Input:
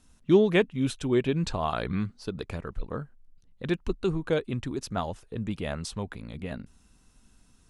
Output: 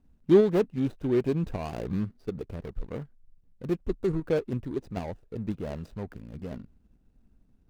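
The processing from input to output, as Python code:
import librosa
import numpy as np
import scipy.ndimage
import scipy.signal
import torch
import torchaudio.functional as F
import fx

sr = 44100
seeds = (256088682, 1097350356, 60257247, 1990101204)

p1 = scipy.signal.medfilt(x, 41)
p2 = fx.level_steps(p1, sr, step_db=10)
p3 = p1 + F.gain(torch.from_numpy(p2), 1.0).numpy()
p4 = fx.dynamic_eq(p3, sr, hz=480.0, q=0.92, threshold_db=-35.0, ratio=4.0, max_db=4)
y = F.gain(torch.from_numpy(p4), -6.0).numpy()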